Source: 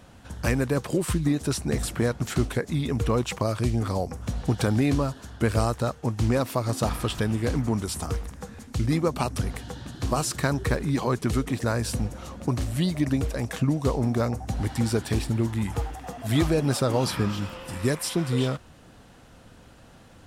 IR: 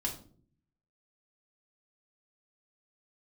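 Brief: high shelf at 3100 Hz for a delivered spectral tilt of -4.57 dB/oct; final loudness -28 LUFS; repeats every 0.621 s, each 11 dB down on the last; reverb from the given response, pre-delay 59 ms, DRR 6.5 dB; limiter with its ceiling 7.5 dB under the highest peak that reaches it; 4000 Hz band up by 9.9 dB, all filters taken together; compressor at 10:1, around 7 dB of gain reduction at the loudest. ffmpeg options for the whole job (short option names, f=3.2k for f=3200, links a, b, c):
-filter_complex "[0:a]highshelf=f=3.1k:g=5.5,equalizer=f=4k:t=o:g=8,acompressor=threshold=-25dB:ratio=10,alimiter=limit=-20.5dB:level=0:latency=1,aecho=1:1:621|1242|1863:0.282|0.0789|0.0221,asplit=2[a][b];[1:a]atrim=start_sample=2205,adelay=59[c];[b][c]afir=irnorm=-1:irlink=0,volume=-9dB[d];[a][d]amix=inputs=2:normalize=0,volume=1.5dB"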